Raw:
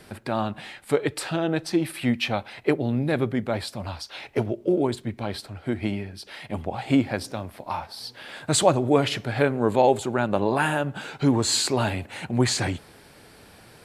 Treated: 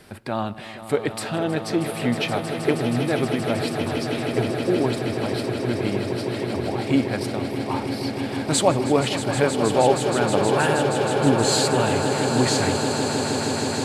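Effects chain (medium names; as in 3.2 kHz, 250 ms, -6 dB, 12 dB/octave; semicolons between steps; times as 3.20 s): echo with a slow build-up 158 ms, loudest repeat 8, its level -11 dB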